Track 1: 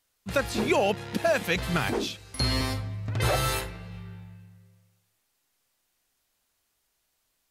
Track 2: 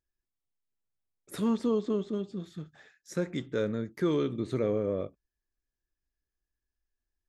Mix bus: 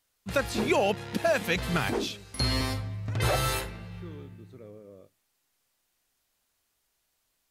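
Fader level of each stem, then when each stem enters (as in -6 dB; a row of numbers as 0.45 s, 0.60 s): -1.0 dB, -19.0 dB; 0.00 s, 0.00 s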